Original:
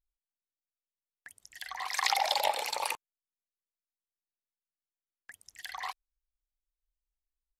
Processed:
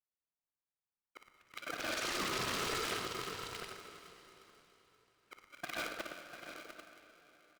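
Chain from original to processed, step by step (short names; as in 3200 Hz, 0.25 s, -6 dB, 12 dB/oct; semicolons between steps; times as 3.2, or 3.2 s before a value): local time reversal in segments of 0.128 s; low-pass opened by the level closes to 800 Hz, open at -30.5 dBFS; in parallel at 0 dB: compressor, threshold -44 dBFS, peak gain reduction 20 dB; on the sum: limiter -18 dBFS, peak gain reduction 9.5 dB; on a send: tapped delay 57/112/347/697/790 ms -8.5/-10/-18/-11.5/-14 dB; on the sum: wavefolder -28 dBFS; BPF 290–7400 Hz; plate-style reverb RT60 3.9 s, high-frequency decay 0.9×, pre-delay 0 ms, DRR 6.5 dB; polarity switched at an audio rate 440 Hz; gain -3 dB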